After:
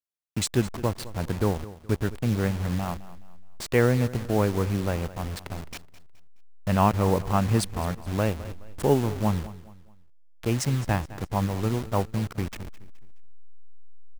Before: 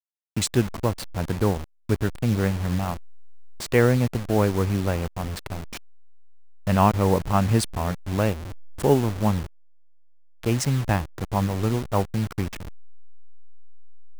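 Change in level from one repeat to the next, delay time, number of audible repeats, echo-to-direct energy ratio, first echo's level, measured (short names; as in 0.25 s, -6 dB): -9.0 dB, 0.211 s, 3, -16.5 dB, -17.0 dB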